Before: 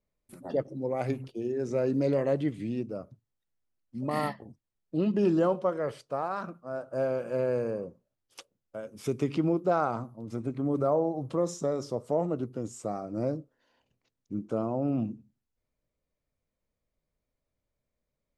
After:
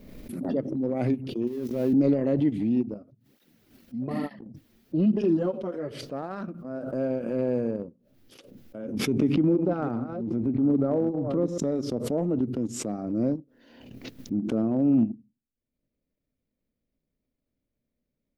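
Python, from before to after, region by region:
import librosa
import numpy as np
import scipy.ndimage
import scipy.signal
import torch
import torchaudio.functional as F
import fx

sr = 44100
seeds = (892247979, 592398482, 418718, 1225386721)

y = fx.chain(x, sr, fx.crossing_spikes(level_db=-27.5),
    fx.high_shelf(hz=7200.0, db=-8.0),
    fx.level_steps(step_db=12), at=(1.47, 1.93))
y = fx.chain(y, sr, fx.peak_eq(hz=68.0, db=-11.0, octaves=0.74),
    fx.flanger_cancel(hz=1.1, depth_ms=7.3), at=(2.94, 5.91))
y = fx.chain(y, sr, fx.reverse_delay(ms=386, wet_db=-10.5),
    fx.high_shelf(hz=3500.0, db=-10.5),
    fx.notch(hz=670.0, q=16.0), at=(8.78, 11.58))
y = fx.graphic_eq_10(y, sr, hz=(250, 1000, 8000), db=(11, -8, -10))
y = fx.transient(y, sr, attack_db=-4, sustain_db=-8)
y = fx.pre_swell(y, sr, db_per_s=45.0)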